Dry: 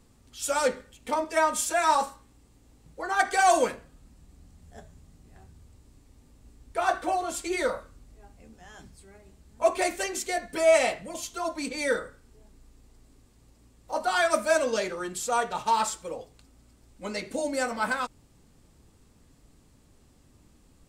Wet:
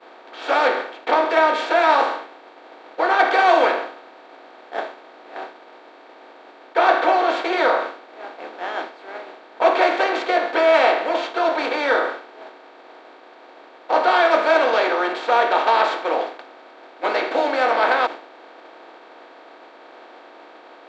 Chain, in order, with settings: spectral levelling over time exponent 0.4; elliptic band-pass 310–3900 Hz, stop band 50 dB; expander -25 dBFS; trim +2.5 dB

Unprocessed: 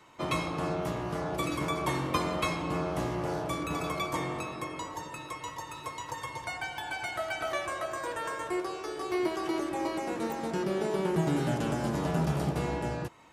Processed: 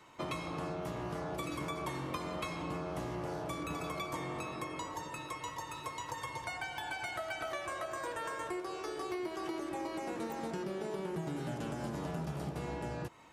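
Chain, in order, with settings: compression, threshold -34 dBFS, peak gain reduction 10.5 dB; trim -1.5 dB

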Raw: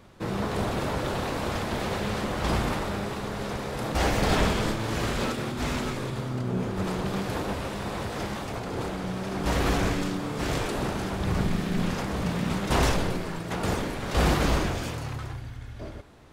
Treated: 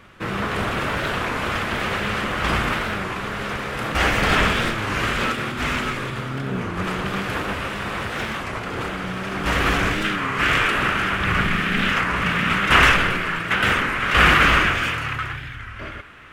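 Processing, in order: high-order bell 1.9 kHz +9.5 dB, from 10.04 s +16 dB; warped record 33 1/3 rpm, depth 160 cents; trim +2 dB

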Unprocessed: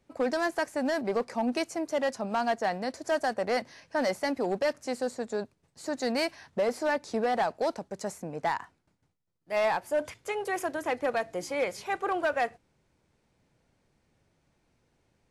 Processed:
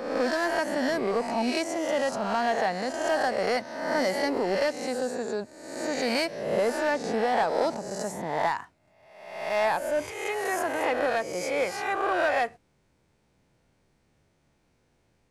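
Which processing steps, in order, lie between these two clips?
reverse spectral sustain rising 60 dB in 0.99 s

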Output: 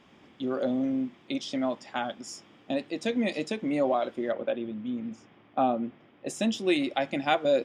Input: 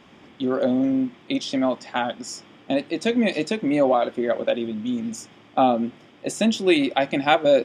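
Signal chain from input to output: 4.32–6.27 s: low-pass 2.6 kHz 12 dB/octave; trim -7 dB

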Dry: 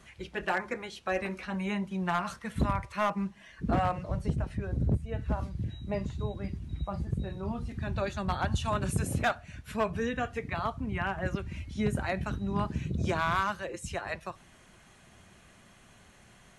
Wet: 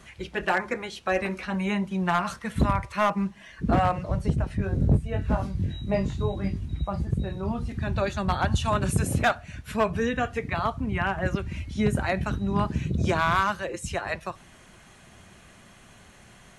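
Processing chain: 4.57–6.66 s: doubling 21 ms -3 dB; trim +5.5 dB

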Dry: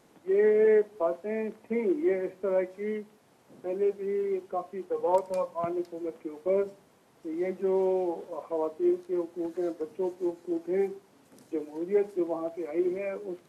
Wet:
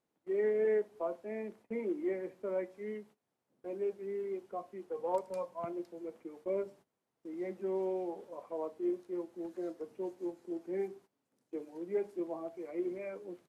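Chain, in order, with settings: gate -48 dBFS, range -16 dB; trim -8.5 dB

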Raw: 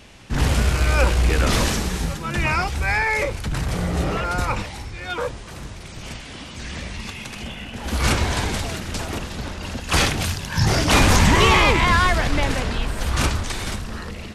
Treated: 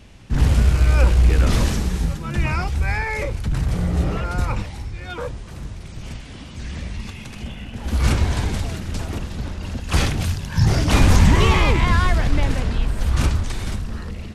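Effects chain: bass shelf 260 Hz +10.5 dB; trim -5.5 dB

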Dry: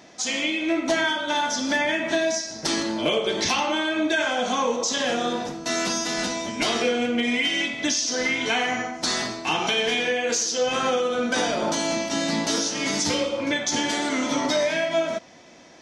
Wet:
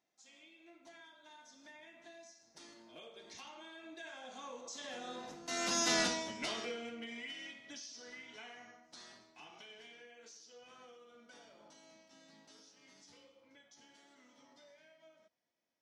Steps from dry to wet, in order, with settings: Doppler pass-by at 5.93 s, 11 m/s, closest 1.6 m; bass shelf 450 Hz -4.5 dB; trim -3 dB

